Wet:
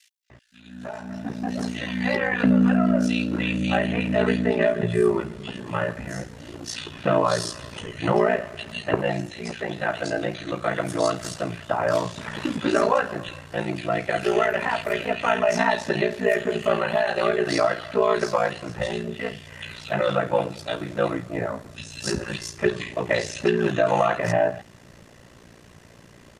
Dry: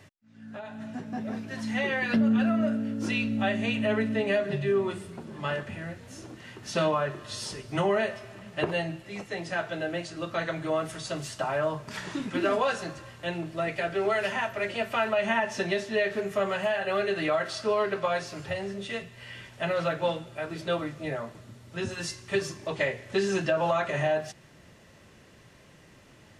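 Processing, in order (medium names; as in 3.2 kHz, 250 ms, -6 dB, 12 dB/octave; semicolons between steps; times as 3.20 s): bands offset in time highs, lows 300 ms, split 2.6 kHz; ring modulator 29 Hz; trim +8.5 dB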